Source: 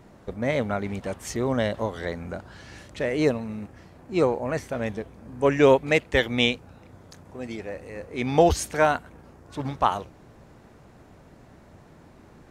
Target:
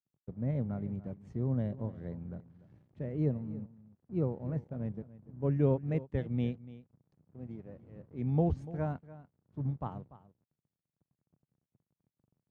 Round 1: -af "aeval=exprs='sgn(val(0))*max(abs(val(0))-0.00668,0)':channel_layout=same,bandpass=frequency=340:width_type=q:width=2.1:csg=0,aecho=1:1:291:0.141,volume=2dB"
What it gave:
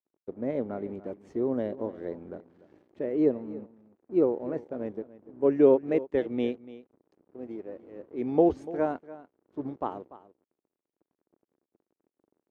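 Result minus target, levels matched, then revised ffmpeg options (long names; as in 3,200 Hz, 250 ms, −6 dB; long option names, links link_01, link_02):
125 Hz band −18.0 dB
-af "aeval=exprs='sgn(val(0))*max(abs(val(0))-0.00668,0)':channel_layout=same,bandpass=frequency=140:width_type=q:width=2.1:csg=0,aecho=1:1:291:0.141,volume=2dB"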